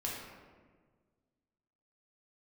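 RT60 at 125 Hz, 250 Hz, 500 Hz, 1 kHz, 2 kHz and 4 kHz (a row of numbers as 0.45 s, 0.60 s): 2.1 s, 2.0 s, 1.7 s, 1.4 s, 1.2 s, 0.85 s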